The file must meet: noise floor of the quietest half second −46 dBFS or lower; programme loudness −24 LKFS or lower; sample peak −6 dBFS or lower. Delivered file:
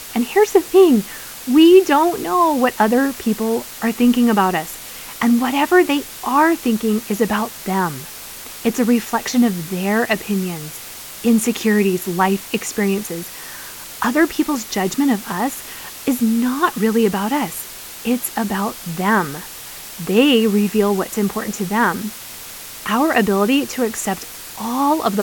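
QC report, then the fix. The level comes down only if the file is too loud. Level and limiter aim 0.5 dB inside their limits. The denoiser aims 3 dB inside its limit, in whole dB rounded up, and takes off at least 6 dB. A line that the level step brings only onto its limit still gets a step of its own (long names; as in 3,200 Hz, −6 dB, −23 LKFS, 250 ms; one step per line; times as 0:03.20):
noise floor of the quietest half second −34 dBFS: out of spec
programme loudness −17.5 LKFS: out of spec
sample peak −1.5 dBFS: out of spec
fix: broadband denoise 8 dB, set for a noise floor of −34 dBFS
level −7 dB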